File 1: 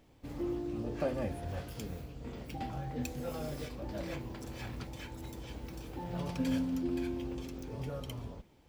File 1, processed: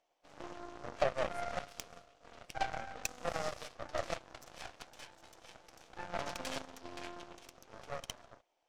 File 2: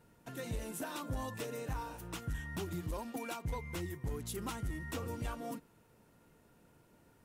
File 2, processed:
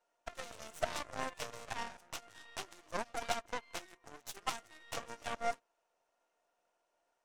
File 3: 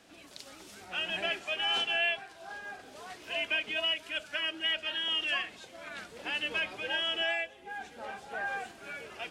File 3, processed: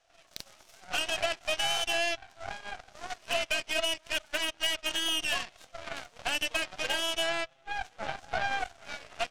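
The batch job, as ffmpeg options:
-af "highpass=f=430:w=0.5412,highpass=f=430:w=1.3066,equalizer=f=430:t=q:w=4:g=-5,equalizer=f=690:t=q:w=4:g=10,equalizer=f=1.1k:t=q:w=4:g=3,equalizer=f=2.9k:t=q:w=4:g=3,equalizer=f=5.9k:t=q:w=4:g=6,lowpass=f=8.8k:w=0.5412,lowpass=f=8.8k:w=1.3066,acompressor=threshold=-32dB:ratio=6,aeval=exprs='0.0708*(cos(1*acos(clip(val(0)/0.0708,-1,1)))-cos(1*PI/2))+0.00794*(cos(6*acos(clip(val(0)/0.0708,-1,1)))-cos(6*PI/2))+0.00891*(cos(7*acos(clip(val(0)/0.0708,-1,1)))-cos(7*PI/2))':c=same,volume=5dB"

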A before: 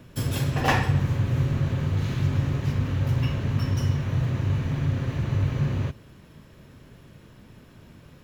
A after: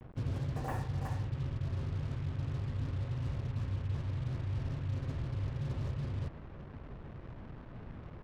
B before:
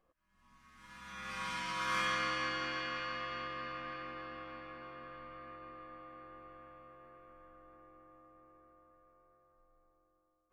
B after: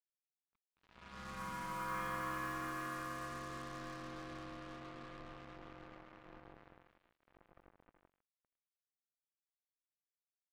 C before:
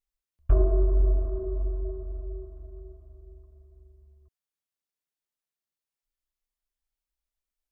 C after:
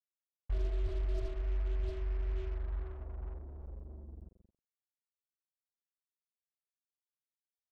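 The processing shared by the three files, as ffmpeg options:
-af "lowshelf=f=100:g=8,aecho=1:1:370:0.501,areverse,acompressor=threshold=-30dB:ratio=8,areverse,adynamicequalizer=threshold=0.00355:dfrequency=190:dqfactor=1:tfrequency=190:tqfactor=1:attack=5:release=100:ratio=0.375:range=2.5:mode=cutabove:tftype=bell,lowpass=1.2k,acrusher=bits=7:mix=0:aa=0.5,volume=-1dB"

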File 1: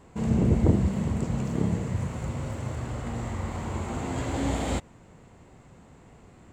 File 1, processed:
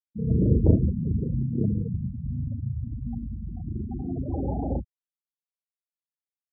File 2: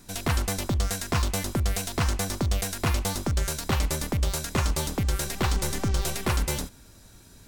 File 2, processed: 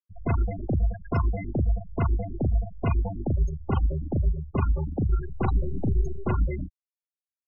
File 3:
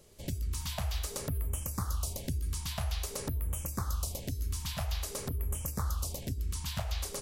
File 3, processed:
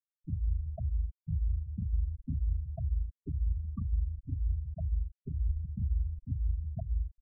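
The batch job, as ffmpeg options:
-filter_complex "[0:a]asplit=2[a][b];[b]adelay=38,volume=-3dB[c];[a][c]amix=inputs=2:normalize=0,afftfilt=real='re*gte(hypot(re,im),0.112)':imag='im*gte(hypot(re,im),0.112)':win_size=1024:overlap=0.75"

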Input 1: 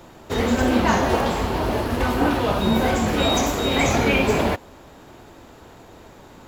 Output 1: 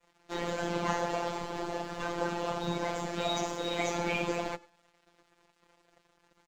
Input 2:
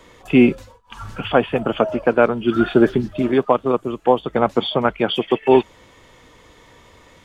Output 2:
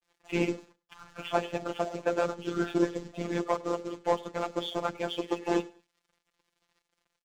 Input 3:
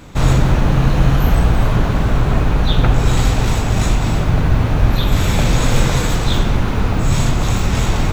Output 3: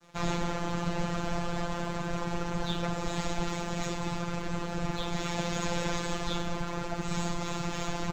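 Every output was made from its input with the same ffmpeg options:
-af "bass=f=250:g=-8,treble=f=4k:g=-2,bandreject=f=60:t=h:w=6,bandreject=f=120:t=h:w=6,bandreject=f=180:t=h:w=6,bandreject=f=240:t=h:w=6,bandreject=f=300:t=h:w=6,bandreject=f=360:t=h:w=6,bandreject=f=420:t=h:w=6,bandreject=f=480:t=h:w=6,adynamicequalizer=threshold=0.0251:dfrequency=2200:dqfactor=0.72:tfrequency=2200:tqfactor=0.72:attack=5:release=100:ratio=0.375:range=1.5:mode=cutabove:tftype=bell,aresample=16000,acrusher=bits=4:mode=log:mix=0:aa=0.000001,aresample=44100,asoftclip=type=tanh:threshold=-9dB,afftfilt=real='hypot(re,im)*cos(2*PI*random(0))':imag='hypot(re,im)*sin(2*PI*random(1))':win_size=512:overlap=0.75,aeval=exprs='sgn(val(0))*max(abs(val(0))-0.00299,0)':c=same,afftfilt=real='hypot(re,im)*cos(PI*b)':imag='0':win_size=1024:overlap=0.75,aecho=1:1:101|202:0.0668|0.0201"

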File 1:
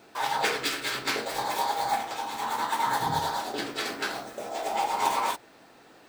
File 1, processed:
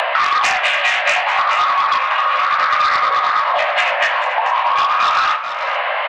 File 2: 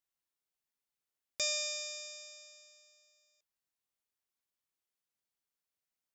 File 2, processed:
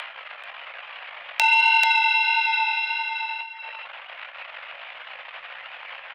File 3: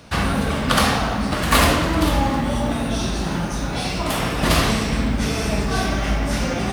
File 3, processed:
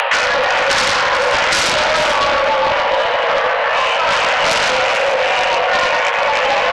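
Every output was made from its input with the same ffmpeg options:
-af "flanger=delay=15.5:depth=4.1:speed=1.6,aresample=11025,asoftclip=type=tanh:threshold=-20dB,aresample=44100,flanger=delay=7.9:depth=9.3:regen=82:speed=0.49:shape=sinusoidal,highpass=f=230:t=q:w=0.5412,highpass=f=230:t=q:w=1.307,lowpass=f=2.6k:t=q:w=0.5176,lowpass=f=2.6k:t=q:w=0.7071,lowpass=f=2.6k:t=q:w=1.932,afreqshift=300,acompressor=mode=upward:threshold=-39dB:ratio=2.5,aeval=exprs='0.119*sin(PI/2*3.16*val(0)/0.119)':c=same,aemphasis=mode=production:type=75fm,acompressor=threshold=-32dB:ratio=6,anlmdn=0.00251,aecho=1:1:437:0.299,alimiter=level_in=19dB:limit=-1dB:release=50:level=0:latency=1,volume=-1dB"

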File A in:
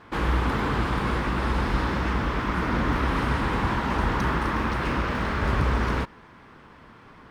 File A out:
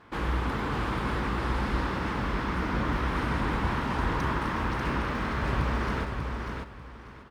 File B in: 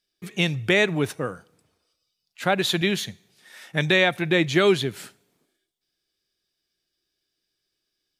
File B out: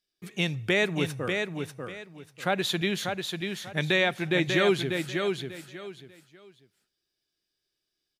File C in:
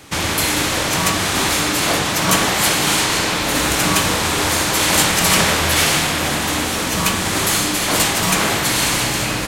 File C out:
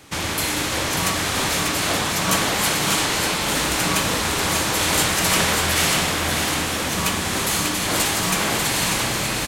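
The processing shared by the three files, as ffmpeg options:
-af "aecho=1:1:592|1184|1776:0.562|0.135|0.0324,volume=-5dB"

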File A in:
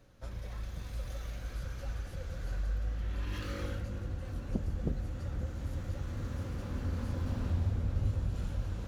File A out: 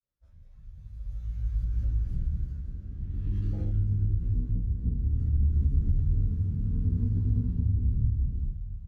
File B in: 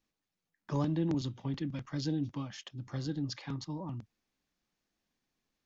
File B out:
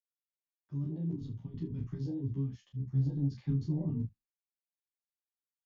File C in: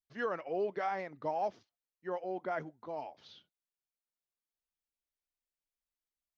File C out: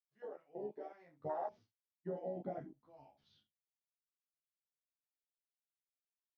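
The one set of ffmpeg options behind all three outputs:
-filter_complex "[0:a]adynamicequalizer=threshold=0.00501:dfrequency=270:dqfactor=1:tfrequency=270:tqfactor=1:attack=5:release=100:ratio=0.375:range=1.5:mode=boostabove:tftype=bell,agate=range=-33dB:threshold=-55dB:ratio=3:detection=peak,tremolo=f=0.53:d=0.61,dynaudnorm=f=150:g=11:m=14dB,alimiter=limit=-16.5dB:level=0:latency=1:release=38,aecho=1:1:29|71:0.596|0.178,acompressor=threshold=-23dB:ratio=16,asubboost=boost=6:cutoff=180,afwtdn=0.0708,asplit=2[a][b];[b]adelay=11.9,afreqshift=0.35[c];[a][c]amix=inputs=2:normalize=1,volume=-8dB"

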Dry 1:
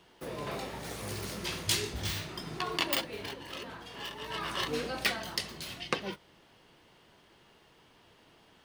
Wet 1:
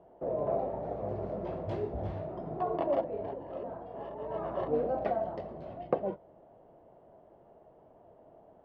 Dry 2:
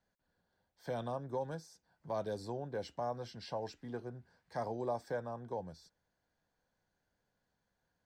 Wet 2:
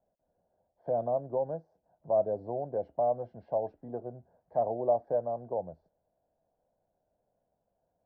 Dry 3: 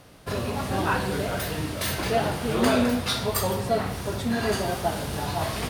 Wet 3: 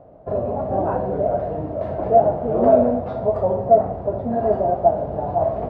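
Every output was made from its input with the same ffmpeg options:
-af "lowpass=f=650:t=q:w=4.9"

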